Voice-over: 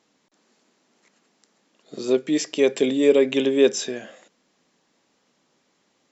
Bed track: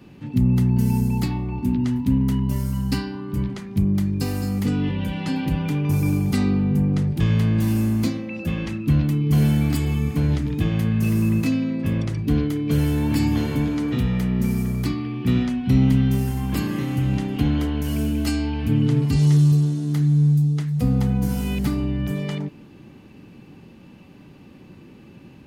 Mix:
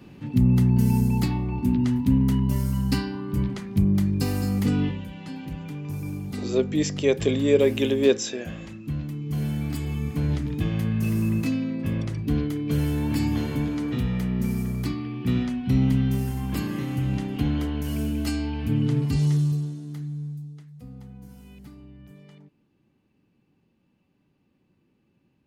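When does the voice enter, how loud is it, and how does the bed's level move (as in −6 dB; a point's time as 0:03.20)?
4.45 s, −2.5 dB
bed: 0:04.83 −0.5 dB
0:05.06 −11.5 dB
0:09.14 −11.5 dB
0:10.31 −4 dB
0:19.16 −4 dB
0:20.76 −22.5 dB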